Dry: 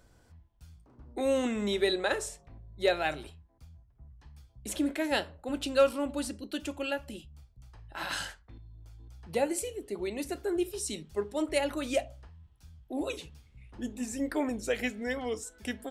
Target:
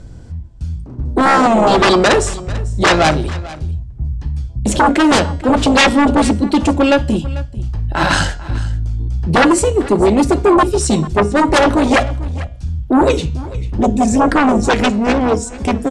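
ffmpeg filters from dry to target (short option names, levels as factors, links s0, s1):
-filter_complex "[0:a]asplit=2[s0][s1];[s1]adynamicsmooth=sensitivity=3:basefreq=670,volume=1.41[s2];[s0][s2]amix=inputs=2:normalize=0,bass=f=250:g=14,treble=f=4000:g=1,aeval=exprs='0.501*sin(PI/2*4.47*val(0)/0.501)':c=same,lowpass=f=8800:w=0.5412,lowpass=f=8800:w=1.3066,bandreject=f=238.5:t=h:w=4,bandreject=f=477:t=h:w=4,bandreject=f=715.5:t=h:w=4,bandreject=f=954:t=h:w=4,bandreject=f=1192.5:t=h:w=4,bandreject=f=1431:t=h:w=4,bandreject=f=1669.5:t=h:w=4,bandreject=f=1908:t=h:w=4,bandreject=f=2146.5:t=h:w=4,bandreject=f=2385:t=h:w=4,bandreject=f=2623.5:t=h:w=4,bandreject=f=2862:t=h:w=4,bandreject=f=3100.5:t=h:w=4,bandreject=f=3339:t=h:w=4,bandreject=f=3577.5:t=h:w=4,bandreject=f=3816:t=h:w=4,bandreject=f=4054.5:t=h:w=4,bandreject=f=4293:t=h:w=4,bandreject=f=4531.5:t=h:w=4,bandreject=f=4770:t=h:w=4,bandreject=f=5008.5:t=h:w=4,bandreject=f=5247:t=h:w=4,bandreject=f=5485.5:t=h:w=4,bandreject=f=5724:t=h:w=4,bandreject=f=5962.5:t=h:w=4,bandreject=f=6201:t=h:w=4,bandreject=f=6439.5:t=h:w=4,bandreject=f=6678:t=h:w=4,bandreject=f=6916.5:t=h:w=4,bandreject=f=7155:t=h:w=4,bandreject=f=7393.5:t=h:w=4,bandreject=f=7632:t=h:w=4,bandreject=f=7870.5:t=h:w=4,bandreject=f=8109:t=h:w=4,bandreject=f=8347.5:t=h:w=4,asplit=2[s3][s4];[s4]aecho=0:1:444:0.119[s5];[s3][s5]amix=inputs=2:normalize=0,dynaudnorm=f=260:g=5:m=3.76,lowshelf=f=180:g=-9,volume=0.794"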